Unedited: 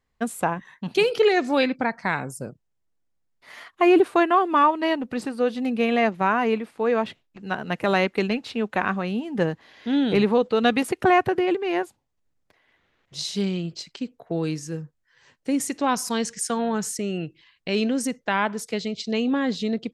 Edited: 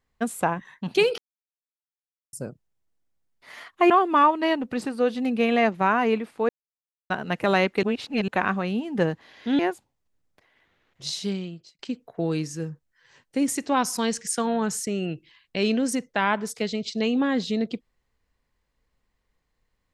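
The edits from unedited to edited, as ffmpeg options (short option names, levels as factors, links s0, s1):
-filter_complex "[0:a]asplit=10[s0][s1][s2][s3][s4][s5][s6][s7][s8][s9];[s0]atrim=end=1.18,asetpts=PTS-STARTPTS,afade=t=out:st=1.176:d=0.004:c=hsin[s10];[s1]atrim=start=1.18:end=2.33,asetpts=PTS-STARTPTS,volume=0[s11];[s2]atrim=start=2.33:end=3.902,asetpts=PTS-STARTPTS,afade=t=in:d=0.004:c=hsin[s12];[s3]atrim=start=4.298:end=6.89,asetpts=PTS-STARTPTS,afade=t=out:st=2.588:d=0.004:c=hsin[s13];[s4]atrim=start=6.89:end=7.5,asetpts=PTS-STARTPTS,volume=0[s14];[s5]atrim=start=7.5:end=8.232,asetpts=PTS-STARTPTS,afade=t=in:d=0.004:c=hsin[s15];[s6]atrim=start=8.228:end=8.682,asetpts=PTS-STARTPTS,areverse[s16];[s7]atrim=start=8.678:end=9.992[s17];[s8]atrim=start=11.708:end=13.91,asetpts=PTS-STARTPTS,afade=t=out:st=1.482:d=0.72[s18];[s9]atrim=start=13.91,asetpts=PTS-STARTPTS,afade=t=in:d=0.004:c=hsin[s19];[s10][s11][s12]concat=n=3:v=0:a=1[s20];[s13][s14][s15]concat=n=3:v=0:a=1[s21];[s20][s21]acrossfade=d=0.004:c1=hsin:c2=hsin[s22];[s22][s16]acrossfade=d=0.004:c1=hsin:c2=hsin[s23];[s23][s17]acrossfade=d=0.004:c1=hsin:c2=hsin[s24];[s18][s19]concat=n=2:v=0:a=1[s25];[s24][s25]acrossfade=d=0.004:c1=hsin:c2=hsin"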